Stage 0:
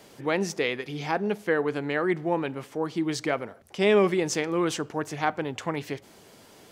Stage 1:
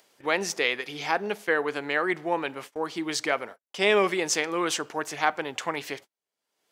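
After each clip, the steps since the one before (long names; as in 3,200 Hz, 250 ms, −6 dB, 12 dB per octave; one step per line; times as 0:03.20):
high-pass filter 890 Hz 6 dB per octave
noise gate −46 dBFS, range −47 dB
upward compression, threshold −43 dBFS
level +5 dB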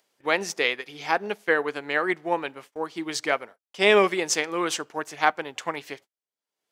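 expander for the loud parts 1.5 to 1, over −45 dBFS
level +4 dB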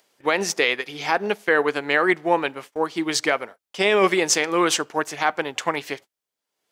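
brickwall limiter −14 dBFS, peak gain reduction 10 dB
level +7 dB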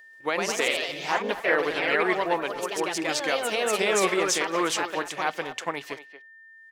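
delay with pitch and tempo change per echo 133 ms, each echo +2 semitones, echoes 3
far-end echo of a speakerphone 230 ms, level −12 dB
steady tone 1,800 Hz −41 dBFS
level −6.5 dB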